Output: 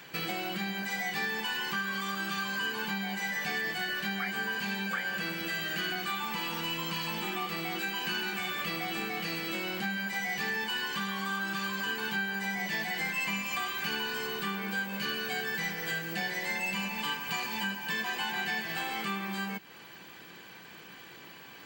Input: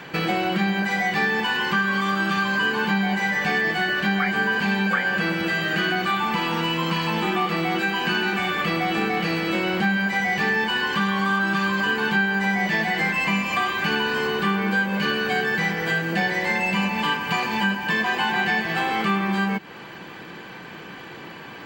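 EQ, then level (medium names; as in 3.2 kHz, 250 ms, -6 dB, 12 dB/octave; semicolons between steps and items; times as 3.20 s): pre-emphasis filter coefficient 0.8; 0.0 dB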